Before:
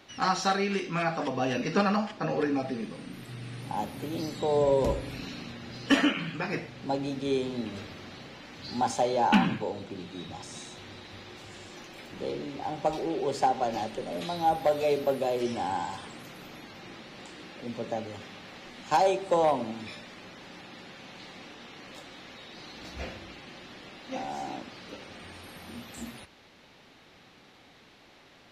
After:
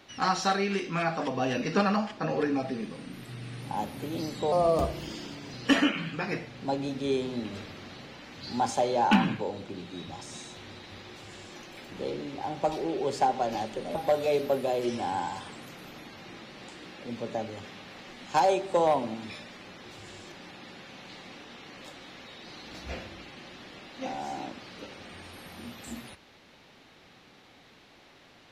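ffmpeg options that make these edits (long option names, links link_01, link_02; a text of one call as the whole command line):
ffmpeg -i in.wav -filter_complex "[0:a]asplit=6[link_01][link_02][link_03][link_04][link_05][link_06];[link_01]atrim=end=4.524[link_07];[link_02]atrim=start=4.52:end=5.74,asetpts=PTS-STARTPTS,asetrate=53361,aresample=44100,atrim=end_sample=44464,asetpts=PTS-STARTPTS[link_08];[link_03]atrim=start=5.736:end=14.162[link_09];[link_04]atrim=start=14.518:end=20.422[link_10];[link_05]atrim=start=11.308:end=11.782[link_11];[link_06]atrim=start=20.418[link_12];[link_07][link_08]acrossfade=duration=0.004:curve1=hsin:curve2=hsin[link_13];[link_13][link_09]acrossfade=duration=0.004:curve1=hsin:curve2=hsin[link_14];[link_14][link_10]acrossfade=duration=0.004:curve1=hsin:curve2=hsin[link_15];[link_15][link_11]acrossfade=duration=0.004:curve1=hsin:curve2=hsin[link_16];[link_16][link_12]acrossfade=duration=0.004:curve1=hsin:curve2=hsin" out.wav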